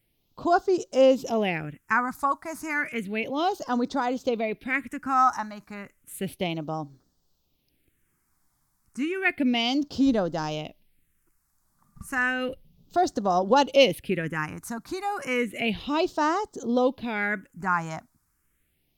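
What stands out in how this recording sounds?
phasing stages 4, 0.32 Hz, lowest notch 460–2400 Hz

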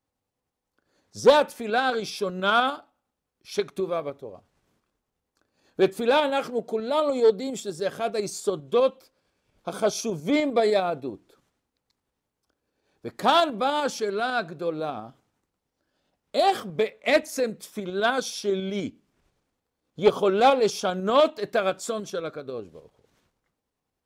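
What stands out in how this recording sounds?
tremolo saw up 10 Hz, depth 40%

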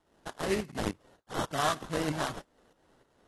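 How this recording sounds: tremolo saw up 3.3 Hz, depth 70%; aliases and images of a low sample rate 2.4 kHz, jitter 20%; AAC

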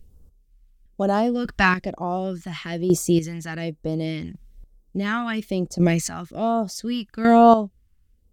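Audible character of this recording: phasing stages 2, 1.1 Hz, lowest notch 500–2100 Hz; chopped level 0.69 Hz, depth 65%, duty 20%

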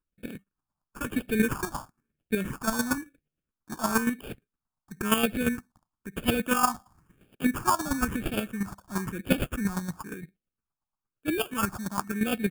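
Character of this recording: aliases and images of a low sample rate 2 kHz, jitter 0%; phasing stages 4, 0.99 Hz, lowest notch 430–1000 Hz; chopped level 8.6 Hz, depth 60%, duty 20%

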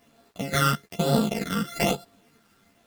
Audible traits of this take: a buzz of ramps at a fixed pitch in blocks of 64 samples; phasing stages 12, 1.1 Hz, lowest notch 720–2200 Hz; a quantiser's noise floor 10-bit, dither none; a shimmering, thickened sound

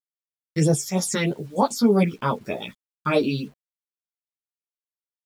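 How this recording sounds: phasing stages 6, 3.2 Hz, lowest notch 660–2500 Hz; a quantiser's noise floor 10-bit, dither none; a shimmering, thickened sound

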